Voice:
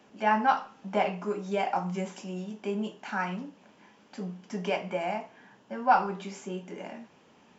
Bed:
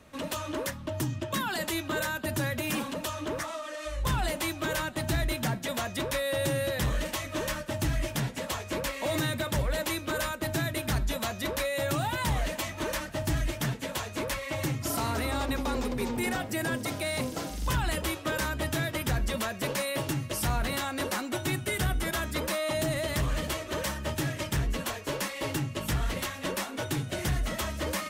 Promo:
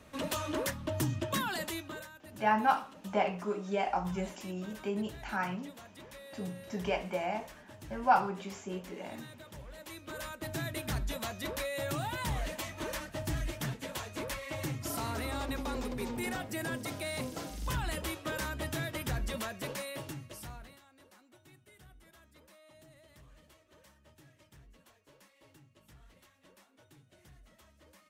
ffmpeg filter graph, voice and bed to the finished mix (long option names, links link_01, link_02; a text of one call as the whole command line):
ffmpeg -i stem1.wav -i stem2.wav -filter_complex "[0:a]adelay=2200,volume=-3dB[link_01];[1:a]volume=13dB,afade=type=out:start_time=1.27:duration=0.82:silence=0.112202,afade=type=in:start_time=9.74:duration=1.01:silence=0.199526,afade=type=out:start_time=19.39:duration=1.41:silence=0.0668344[link_02];[link_01][link_02]amix=inputs=2:normalize=0" out.wav